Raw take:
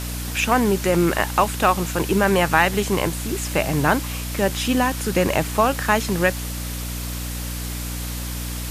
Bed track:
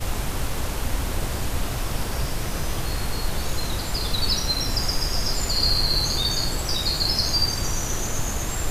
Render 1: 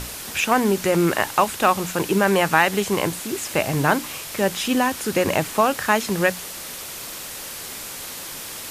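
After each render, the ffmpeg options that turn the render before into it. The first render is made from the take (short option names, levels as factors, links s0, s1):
-af "bandreject=f=60:t=h:w=6,bandreject=f=120:t=h:w=6,bandreject=f=180:t=h:w=6,bandreject=f=240:t=h:w=6,bandreject=f=300:t=h:w=6"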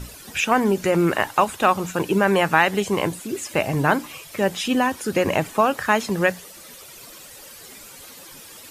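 -af "afftdn=nr=12:nf=-34"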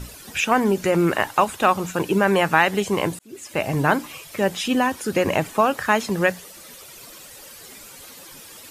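-filter_complex "[0:a]asplit=2[s0][s1];[s0]atrim=end=3.19,asetpts=PTS-STARTPTS,afade=t=out:st=3.186:d=0.004:c=hsin[s2];[s1]atrim=start=3.19,asetpts=PTS-STARTPTS,afade=t=in:d=0.52[s3];[s2][s3]concat=n=2:v=0:a=1"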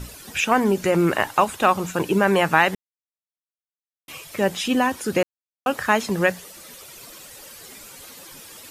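-filter_complex "[0:a]asplit=5[s0][s1][s2][s3][s4];[s0]atrim=end=2.75,asetpts=PTS-STARTPTS,afade=t=out:st=2.746:d=0.004:c=hsin[s5];[s1]atrim=start=2.75:end=4.08,asetpts=PTS-STARTPTS,volume=0[s6];[s2]atrim=start=4.08:end=5.23,asetpts=PTS-STARTPTS,afade=t=in:d=0.004:c=hsin,afade=t=out:st=1.146:d=0.004:c=hsin[s7];[s3]atrim=start=5.23:end=5.66,asetpts=PTS-STARTPTS,volume=0[s8];[s4]atrim=start=5.66,asetpts=PTS-STARTPTS,afade=t=in:d=0.004:c=hsin[s9];[s5][s6][s7][s8][s9]concat=n=5:v=0:a=1"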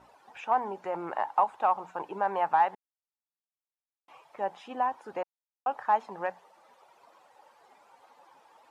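-af "asoftclip=type=hard:threshold=0.376,bandpass=f=850:t=q:w=4.5:csg=0"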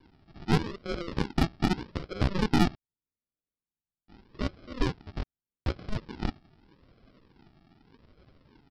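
-af "aresample=11025,acrusher=samples=17:mix=1:aa=0.000001:lfo=1:lforange=10.2:lforate=0.82,aresample=44100,aeval=exprs='0.266*(cos(1*acos(clip(val(0)/0.266,-1,1)))-cos(1*PI/2))+0.0335*(cos(6*acos(clip(val(0)/0.266,-1,1)))-cos(6*PI/2))+0.00188*(cos(8*acos(clip(val(0)/0.266,-1,1)))-cos(8*PI/2))':c=same"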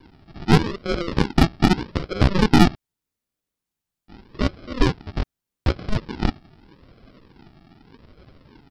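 -af "volume=2.99"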